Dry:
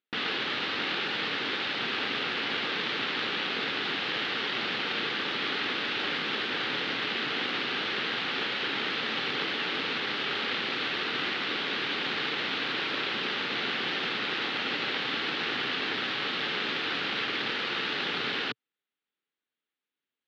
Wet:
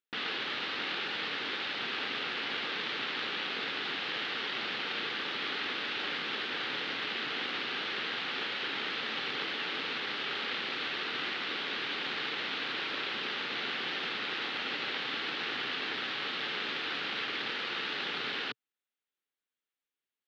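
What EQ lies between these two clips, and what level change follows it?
low shelf 340 Hz -5 dB; -4.0 dB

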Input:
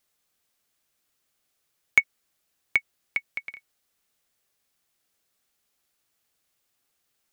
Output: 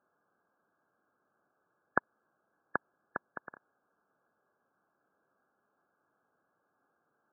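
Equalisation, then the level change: HPF 180 Hz 12 dB/oct; brick-wall FIR low-pass 1700 Hz; +9.0 dB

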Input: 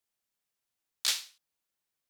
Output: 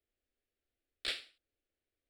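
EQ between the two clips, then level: running mean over 7 samples; tilt -2.5 dB/oct; fixed phaser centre 400 Hz, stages 4; +4.5 dB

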